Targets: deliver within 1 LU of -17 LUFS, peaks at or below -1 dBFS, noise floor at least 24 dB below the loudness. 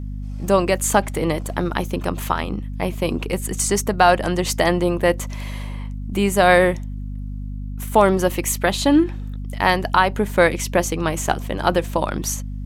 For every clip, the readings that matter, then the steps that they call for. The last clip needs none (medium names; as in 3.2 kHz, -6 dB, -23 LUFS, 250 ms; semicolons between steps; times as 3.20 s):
hum 50 Hz; highest harmonic 250 Hz; hum level -26 dBFS; loudness -20.0 LUFS; peak level -2.5 dBFS; loudness target -17.0 LUFS
-> de-hum 50 Hz, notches 5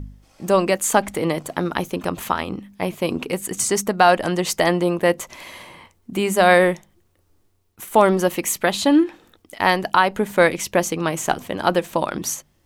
hum not found; loudness -20.0 LUFS; peak level -2.5 dBFS; loudness target -17.0 LUFS
-> trim +3 dB; peak limiter -1 dBFS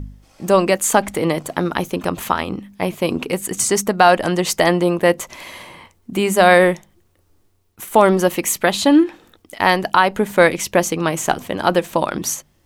loudness -17.5 LUFS; peak level -1.0 dBFS; noise floor -59 dBFS